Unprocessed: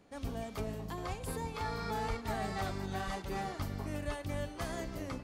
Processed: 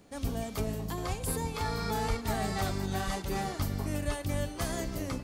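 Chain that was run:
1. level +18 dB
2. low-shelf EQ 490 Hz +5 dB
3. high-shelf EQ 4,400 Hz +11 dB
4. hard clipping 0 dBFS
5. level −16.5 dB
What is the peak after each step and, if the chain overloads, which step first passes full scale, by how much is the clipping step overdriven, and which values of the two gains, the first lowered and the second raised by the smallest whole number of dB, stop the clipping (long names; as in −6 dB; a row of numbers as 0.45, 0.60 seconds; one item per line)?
−6.0, −2.5, −2.0, −2.0, −18.5 dBFS
no step passes full scale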